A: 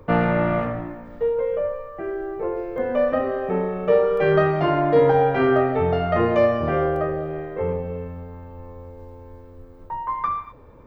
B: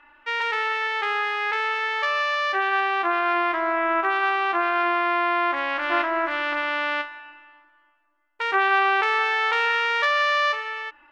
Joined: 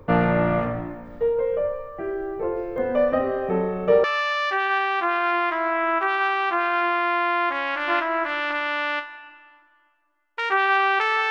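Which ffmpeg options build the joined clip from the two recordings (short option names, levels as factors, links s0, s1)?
-filter_complex "[0:a]apad=whole_dur=11.3,atrim=end=11.3,atrim=end=4.042[s0];[1:a]atrim=start=2.058:end=9.32[s1];[s0][s1]acrossfade=d=0.004:c1=hsin:c2=hsin"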